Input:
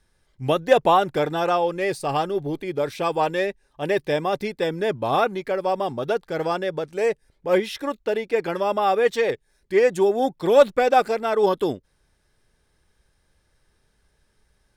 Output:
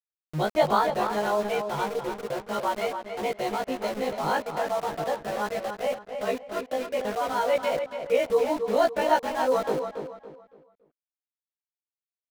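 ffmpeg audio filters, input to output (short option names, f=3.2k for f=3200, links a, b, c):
-filter_complex "[0:a]afftfilt=real='re':imag='-im':win_size=2048:overlap=0.75,lowshelf=f=350:g=5,anlmdn=25.1,aeval=exprs='val(0)*gte(abs(val(0)),0.0251)':c=same,asplit=2[a][b];[b]adelay=337,lowpass=f=2.9k:p=1,volume=-7dB,asplit=2[c][d];[d]adelay=337,lowpass=f=2.9k:p=1,volume=0.33,asplit=2[e][f];[f]adelay=337,lowpass=f=2.9k:p=1,volume=0.33,asplit=2[g][h];[h]adelay=337,lowpass=f=2.9k:p=1,volume=0.33[i];[c][e][g][i]amix=inputs=4:normalize=0[j];[a][j]amix=inputs=2:normalize=0,asetrate=52920,aresample=44100,volume=-2.5dB"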